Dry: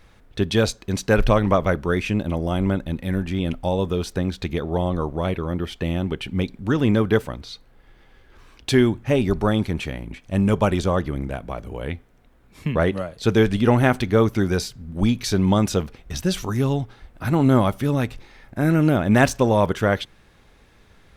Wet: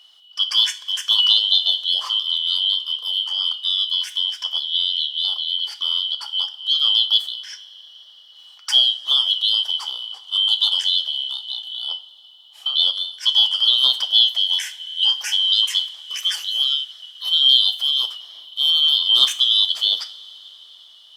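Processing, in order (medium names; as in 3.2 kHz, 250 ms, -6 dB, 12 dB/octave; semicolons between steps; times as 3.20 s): four frequency bands reordered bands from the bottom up 2413; Bessel high-pass 1.4 kHz, order 2; two-slope reverb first 0.35 s, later 4.9 s, from -21 dB, DRR 8 dB; trim +1 dB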